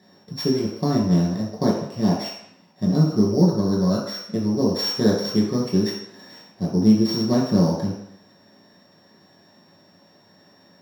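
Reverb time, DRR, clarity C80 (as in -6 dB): 0.75 s, -6.0 dB, 6.0 dB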